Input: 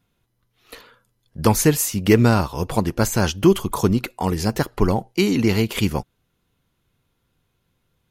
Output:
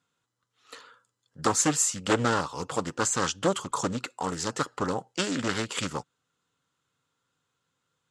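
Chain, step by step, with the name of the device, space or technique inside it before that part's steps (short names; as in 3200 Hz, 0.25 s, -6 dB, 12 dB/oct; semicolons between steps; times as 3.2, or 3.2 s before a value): full-range speaker at full volume (Doppler distortion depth 0.72 ms; speaker cabinet 200–8700 Hz, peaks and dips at 210 Hz -10 dB, 360 Hz -9 dB, 660 Hz -7 dB, 1300 Hz +6 dB, 2300 Hz -5 dB, 7500 Hz +10 dB); gain -4 dB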